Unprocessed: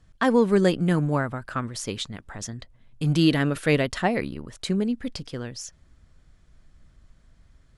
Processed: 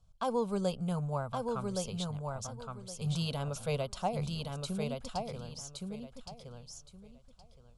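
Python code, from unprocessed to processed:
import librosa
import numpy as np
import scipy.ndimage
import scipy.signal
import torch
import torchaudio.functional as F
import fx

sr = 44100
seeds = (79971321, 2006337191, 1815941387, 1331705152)

y = fx.fixed_phaser(x, sr, hz=760.0, stages=4)
y = fx.echo_feedback(y, sr, ms=1118, feedback_pct=21, wet_db=-4)
y = y * librosa.db_to_amplitude(-7.0)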